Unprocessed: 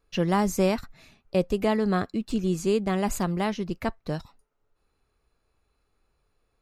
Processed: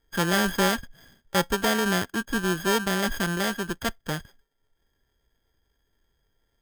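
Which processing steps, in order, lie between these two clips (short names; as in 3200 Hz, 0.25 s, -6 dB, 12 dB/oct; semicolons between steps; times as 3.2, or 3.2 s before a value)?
sample sorter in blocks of 32 samples; formant shift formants +3 st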